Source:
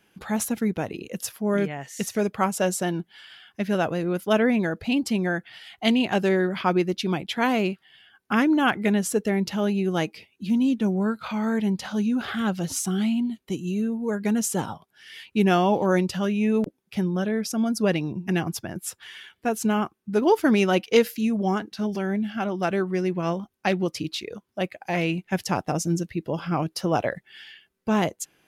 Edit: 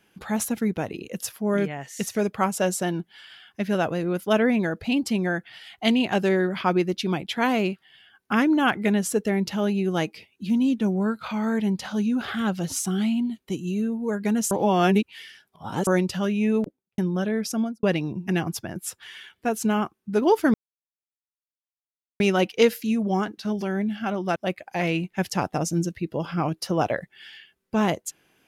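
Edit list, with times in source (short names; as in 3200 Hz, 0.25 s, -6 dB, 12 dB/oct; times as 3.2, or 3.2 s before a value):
14.51–15.87 reverse
16.51–16.98 studio fade out
17.56–17.83 studio fade out
20.54 insert silence 1.66 s
22.7–24.5 cut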